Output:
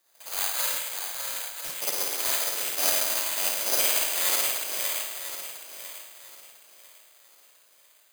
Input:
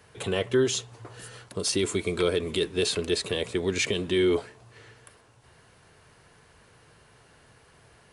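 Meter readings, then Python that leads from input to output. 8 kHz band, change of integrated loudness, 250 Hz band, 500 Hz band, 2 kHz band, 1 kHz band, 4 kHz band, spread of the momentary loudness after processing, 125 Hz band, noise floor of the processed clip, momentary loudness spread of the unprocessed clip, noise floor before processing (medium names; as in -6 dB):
+8.5 dB, +2.0 dB, -20.0 dB, -12.0 dB, +1.5 dB, +6.0 dB, +1.5 dB, 16 LU, under -25 dB, -60 dBFS, 12 LU, -58 dBFS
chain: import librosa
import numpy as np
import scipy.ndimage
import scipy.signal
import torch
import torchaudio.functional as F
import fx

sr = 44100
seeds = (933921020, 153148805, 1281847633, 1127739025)

y = fx.cycle_switch(x, sr, every=2, mode='inverted')
y = fx.filter_lfo_highpass(y, sr, shape='saw_up', hz=1.1, low_hz=510.0, high_hz=2600.0, q=0.78)
y = fx.air_absorb(y, sr, metres=130.0)
y = fx.echo_swing(y, sr, ms=997, ratio=1.5, feedback_pct=41, wet_db=-4)
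y = fx.rev_spring(y, sr, rt60_s=1.4, pass_ms=(52,), chirp_ms=60, drr_db=-7.0)
y = (np.kron(y[::8], np.eye(8)[0]) * 8)[:len(y)]
y = fx.upward_expand(y, sr, threshold_db=-34.0, expansion=1.5)
y = y * 10.0 ** (-8.5 / 20.0)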